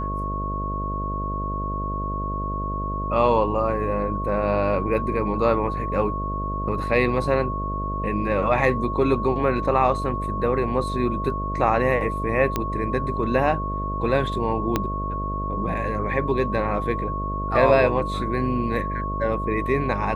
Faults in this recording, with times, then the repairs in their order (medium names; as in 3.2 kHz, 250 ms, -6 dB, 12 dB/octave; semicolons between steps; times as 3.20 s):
buzz 50 Hz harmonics 13 -29 dBFS
whine 1.1 kHz -28 dBFS
12.56 s: pop -9 dBFS
14.76 s: pop -7 dBFS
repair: de-click; de-hum 50 Hz, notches 13; band-stop 1.1 kHz, Q 30